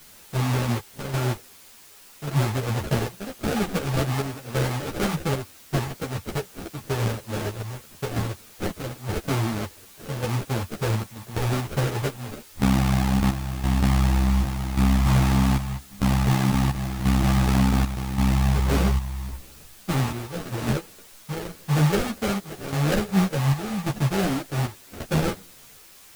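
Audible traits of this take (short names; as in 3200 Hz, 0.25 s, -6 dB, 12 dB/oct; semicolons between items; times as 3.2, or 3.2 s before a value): aliases and images of a low sample rate 1000 Hz, jitter 20%; chopped level 0.88 Hz, depth 65%, duty 70%; a quantiser's noise floor 8-bit, dither triangular; a shimmering, thickened sound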